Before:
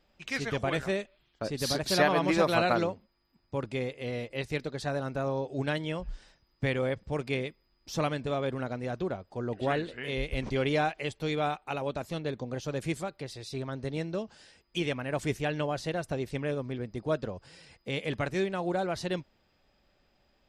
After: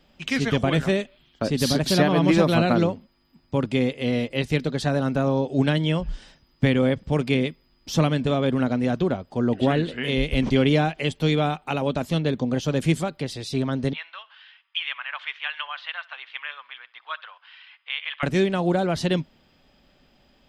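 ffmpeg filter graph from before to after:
-filter_complex "[0:a]asettb=1/sr,asplit=3[a][b][c];[a]atrim=end=13.934[d];[b]atrim=start=13.93:end=18.23,asetpts=PTS-STARTPTS,afade=t=in:d=0.004:c=qsin,afade=t=out:st=4.296:d=0.004:c=qsin,asuperpass=centerf=1900:order=8:qfactor=0.76,aecho=1:1:65|130|195:0.0708|0.0368|0.0191,atrim=end_sample=189630[e];[c]atrim=start=18.226[f];[d][e]acrossfade=d=0.004:c1=hsin:c2=qsin[g];[g][f]acrossfade=d=0.004:c1=qsin:c2=hsin,equalizer=f=160:t=o:w=0.33:g=6,equalizer=f=250:t=o:w=0.33:g=8,equalizer=f=3.15k:t=o:w=0.33:g=6,acrossover=split=440[h][i];[i]acompressor=threshold=-32dB:ratio=3[j];[h][j]amix=inputs=2:normalize=0,volume=8dB"

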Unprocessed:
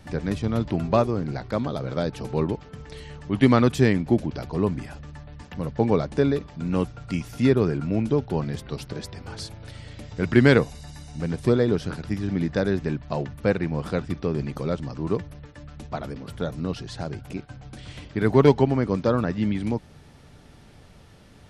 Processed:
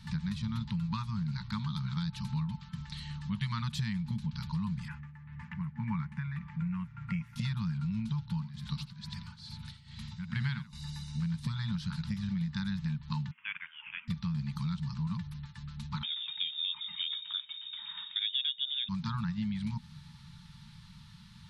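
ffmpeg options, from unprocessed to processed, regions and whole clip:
-filter_complex "[0:a]asettb=1/sr,asplit=3[a][b][c];[a]atrim=end=4.884[d];[b]atrim=start=4.88:end=7.36,asetpts=PTS-STARTPTS,afade=t=in:d=0.004:c=qsin,afade=t=out:st=2.476:d=0.004:c=qsin,highpass=67,highshelf=f=2.9k:t=q:w=3:g=-11.5,tremolo=f=1.8:d=0.68[e];[c]atrim=start=7.356[f];[d][e]acrossfade=d=0.004:c1=hsin:c2=qsin[g];[g][f]acrossfade=d=0.004:c1=qsin:c2=hsin,asettb=1/sr,asplit=3[h][i][j];[h]atrim=end=8.304[k];[i]atrim=start=8.3:end=10.73,asetpts=PTS-STARTPTS,afade=t=in:d=0.004:c=qsin,afade=t=out:st=2.426:d=0.004:c=qsin,acrossover=split=4400[l][m];[m]acompressor=threshold=-45dB:ratio=4:attack=1:release=60[n];[l][n]amix=inputs=2:normalize=0,aecho=1:1:86:0.335,atrim=end_sample=107163,tremolo=f=2.3:d=0.84[o];[j]atrim=start=10.726[p];[k][o]acrossfade=d=0.004:c1=hsin:c2=qsin[q];[q][p]acrossfade=d=0.004:c1=qsin:c2=hsin,asettb=1/sr,asplit=3[r][s][t];[r]atrim=end=13.314[u];[s]atrim=start=13.31:end=14.08,asetpts=PTS-STARTPTS,afade=t=in:d=0.004:c=qsin,afade=t=out:st=0.766:d=0.004:c=qsin,highpass=f=1.2k:w=0.5412,highpass=f=1.2k:w=1.3066,lowpass=f=3.3k:t=q:w=0.5098,lowpass=f=3.3k:t=q:w=0.6013,lowpass=f=3.3k:t=q:w=0.9,lowpass=f=3.3k:t=q:w=2.563,afreqshift=-3900[v];[t]atrim=start=14.076[w];[u][v]acrossfade=d=0.004:c1=hsin:c2=qsin[x];[x][w]acrossfade=d=0.004:c1=qsin:c2=hsin,asettb=1/sr,asplit=3[y][z][aa];[y]atrim=end=16.034[ab];[z]atrim=start=16.03:end=18.89,asetpts=PTS-STARTPTS,afade=t=in:d=0.004:c=qsin,afade=t=out:st=2.856:d=0.004:c=qsin,lowshelf=f=200:g=-8.5,lowpass=f=3.2k:t=q:w=0.5098,lowpass=f=3.2k:t=q:w=0.6013,lowpass=f=3.2k:t=q:w=0.9,lowpass=f=3.2k:t=q:w=2.563,afreqshift=-3800[ac];[aa]atrim=start=18.886[ad];[ab][ac]acrossfade=d=0.004:c1=hsin:c2=qsin[ae];[ae][ad]acrossfade=d=0.004:c1=qsin:c2=hsin,afftfilt=real='re*(1-between(b*sr/4096,230,850))':imag='im*(1-between(b*sr/4096,230,850))':win_size=4096:overlap=0.75,equalizer=f=160:t=o:w=0.67:g=10,equalizer=f=630:t=o:w=0.67:g=5,equalizer=f=4k:t=o:w=0.67:g=11,acompressor=threshold=-25dB:ratio=6,volume=-6dB"

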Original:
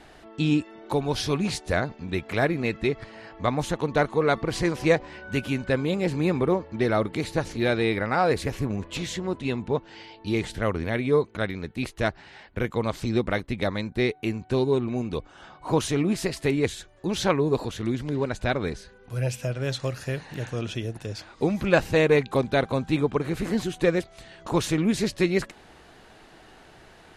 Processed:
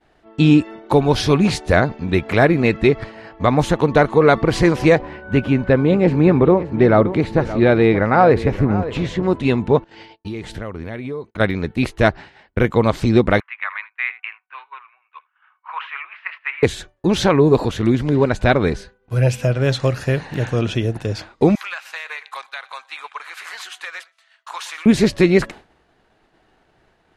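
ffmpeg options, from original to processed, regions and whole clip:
-filter_complex "[0:a]asettb=1/sr,asplit=3[a][b][c];[a]atrim=end=5.014[d];[b]atrim=start=5.01:end=9.23,asetpts=PTS-STARTPTS,afade=t=in:d=0.004:c=qsin,afade=t=out:st=4.216:d=0.004:c=qsin,lowpass=f=1.7k:p=1,aecho=1:1:572:0.188,atrim=end_sample=186102[e];[c]atrim=start=9.226[f];[d][e]acrossfade=d=0.004:c1=hsin:c2=qsin[g];[g][f]acrossfade=d=0.004:c1=qsin:c2=hsin,asettb=1/sr,asplit=3[h][i][j];[h]atrim=end=9.844[k];[i]atrim=start=9.84:end=11.4,asetpts=PTS-STARTPTS,afade=t=in:d=0.004:c=qsin,afade=t=out:st=1.556:d=0.004:c=qsin,agate=range=-16dB:threshold=-47dB:ratio=16:release=100:detection=peak,acompressor=threshold=-35dB:ratio=8:attack=3.2:release=140:knee=1:detection=peak[l];[j]atrim=start=11.396[m];[k][l]acrossfade=d=0.004:c1=hsin:c2=qsin[n];[n][m]acrossfade=d=0.004:c1=qsin:c2=hsin,asettb=1/sr,asplit=3[o][p][q];[o]atrim=end=13.404[r];[p]atrim=start=13.4:end=16.63,asetpts=PTS-STARTPTS,afade=t=in:d=0.004:c=qsin,afade=t=out:st=3.226:d=0.004:c=qsin,asuperpass=centerf=1700:order=8:qfactor=0.99,aecho=1:1:81:0.15,atrim=end_sample=142443[s];[q]atrim=start=16.626[t];[r][s]acrossfade=d=0.004:c1=hsin:c2=qsin[u];[u][t]acrossfade=d=0.004:c1=qsin:c2=hsin,asettb=1/sr,asplit=3[v][w][x];[v]atrim=end=21.554[y];[w]atrim=start=21.55:end=24.86,asetpts=PTS-STARTPTS,afade=t=in:d=0.004:c=qsin,afade=t=out:st=3.306:d=0.004:c=qsin,highpass=f=1.1k:w=0.5412,highpass=f=1.1k:w=1.3066,acompressor=threshold=-34dB:ratio=10:attack=3.2:release=140:knee=1:detection=peak,aecho=1:1:122|244|366:0.178|0.0445|0.0111,atrim=end_sample=145971[z];[x]atrim=start=24.856[aa];[y][z]acrossfade=d=0.004:c1=hsin:c2=qsin[ab];[ab][aa]acrossfade=d=0.004:c1=qsin:c2=hsin,agate=range=-33dB:threshold=-38dB:ratio=3:detection=peak,highshelf=f=4k:g=-8.5,alimiter=level_in=12dB:limit=-1dB:release=50:level=0:latency=1,volume=-1dB"

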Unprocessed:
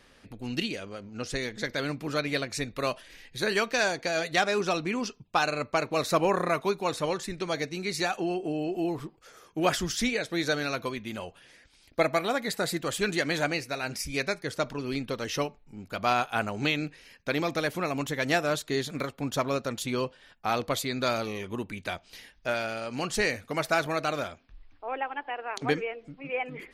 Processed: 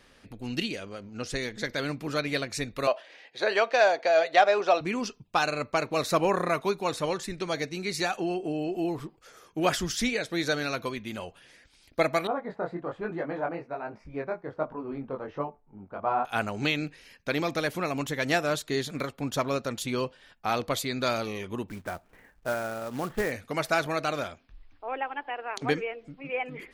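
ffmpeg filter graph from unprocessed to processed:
-filter_complex "[0:a]asettb=1/sr,asplit=3[a][b][c];[a]atrim=end=2.874[d];[b]atrim=start=2.87:end=4.81,asetpts=PTS-STARTPTS,afade=t=in:d=0.004:c=qsin,afade=t=out:st=1.936:d=0.004:c=qsin,highpass=430,lowpass=4.2k,equalizer=f=650:t=o:w=0.88:g=10.5[e];[c]atrim=start=4.806[f];[d][e]acrossfade=d=0.004:c1=hsin:c2=qsin[g];[g][f]acrossfade=d=0.004:c1=qsin:c2=hsin,asettb=1/sr,asplit=3[h][i][j];[h]atrim=end=12.274[k];[i]atrim=start=12.27:end=16.25,asetpts=PTS-STARTPTS,afade=t=in:d=0.004:c=qsin,afade=t=out:st=3.976:d=0.004:c=qsin,flanger=delay=18:depth=5.1:speed=1.2,lowpass=f=960:t=q:w=1.7,lowshelf=f=160:g=-5.5[l];[j]atrim=start=16.246[m];[k][l]acrossfade=d=0.004:c1=hsin:c2=qsin[n];[n][m]acrossfade=d=0.004:c1=qsin:c2=hsin,asettb=1/sr,asplit=3[o][p][q];[o]atrim=end=21.684[r];[p]atrim=start=21.68:end=23.32,asetpts=PTS-STARTPTS,afade=t=in:d=0.004:c=qsin,afade=t=out:st=1.636:d=0.004:c=qsin,lowpass=f=1.7k:w=0.5412,lowpass=f=1.7k:w=1.3066,acrusher=bits=3:mode=log:mix=0:aa=0.000001[s];[q]atrim=start=23.316[t];[r][s]acrossfade=d=0.004:c1=hsin:c2=qsin[u];[u][t]acrossfade=d=0.004:c1=qsin:c2=hsin"

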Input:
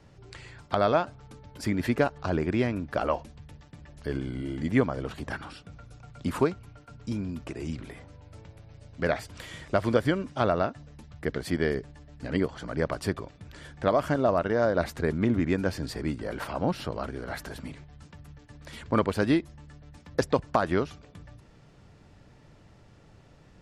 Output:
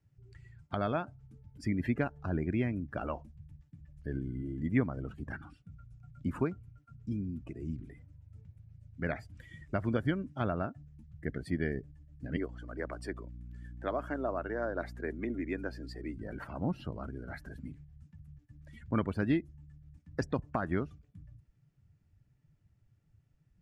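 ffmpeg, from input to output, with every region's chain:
-filter_complex "[0:a]asettb=1/sr,asplit=3[a][b][c];[a]atrim=end=12.364[d];[b]atrim=start=12.36:end=16.18,asetpts=PTS-STARTPTS,afade=t=in:d=0.004:c=qsin,afade=t=out:st=3.816:d=0.004:c=qsin,highpass=f=290:w=0.5412,highpass=f=290:w=1.3066,aeval=exprs='val(0)+0.00891*(sin(2*PI*60*n/s)+sin(2*PI*2*60*n/s)/2+sin(2*PI*3*60*n/s)/3+sin(2*PI*4*60*n/s)/4+sin(2*PI*5*60*n/s)/5)':c=same[e];[c]atrim=start=16.176[f];[d][e]acrossfade=d=0.004:c1=hsin:c2=qsin[g];[g][f]acrossfade=d=0.004:c1=qsin:c2=hsin,afftdn=nr=18:nf=-38,equalizer=f=500:t=o:w=1:g=-8,equalizer=f=1k:t=o:w=1:g=-7,equalizer=f=4k:t=o:w=1:g=-7,volume=-2.5dB"

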